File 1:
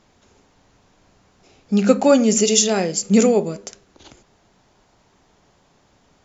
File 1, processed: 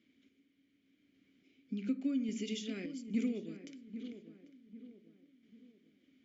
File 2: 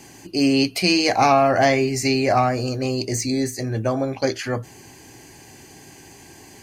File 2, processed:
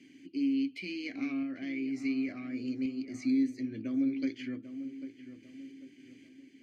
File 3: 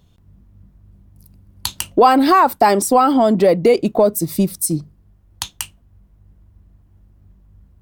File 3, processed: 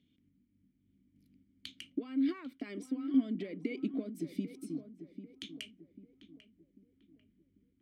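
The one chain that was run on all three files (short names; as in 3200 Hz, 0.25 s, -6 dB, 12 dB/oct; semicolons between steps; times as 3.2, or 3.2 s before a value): dynamic EQ 1100 Hz, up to +6 dB, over -30 dBFS, Q 1.5; compressor 6:1, threshold -19 dBFS; vowel filter i; random-step tremolo, depth 55%; on a send: darkening echo 0.794 s, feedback 42%, low-pass 1500 Hz, level -11 dB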